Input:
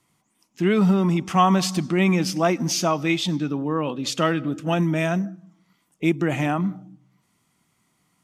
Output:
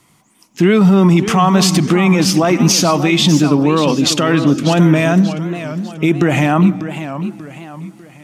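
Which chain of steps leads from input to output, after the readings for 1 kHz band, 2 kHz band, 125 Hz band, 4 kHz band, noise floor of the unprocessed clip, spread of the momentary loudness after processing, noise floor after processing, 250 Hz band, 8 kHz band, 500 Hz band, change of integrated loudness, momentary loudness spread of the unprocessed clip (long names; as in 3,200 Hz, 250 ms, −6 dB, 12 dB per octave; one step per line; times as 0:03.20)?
+6.5 dB, +8.5 dB, +10.5 dB, +11.5 dB, −69 dBFS, 13 LU, −53 dBFS, +10.5 dB, +12.0 dB, +9.0 dB, +9.5 dB, 7 LU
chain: boost into a limiter +16.5 dB
feedback echo with a swinging delay time 593 ms, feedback 40%, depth 184 cents, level −11 dB
level −2.5 dB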